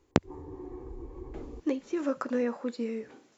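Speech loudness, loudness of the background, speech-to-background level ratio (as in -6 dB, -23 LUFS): -32.5 LUFS, -45.0 LUFS, 12.5 dB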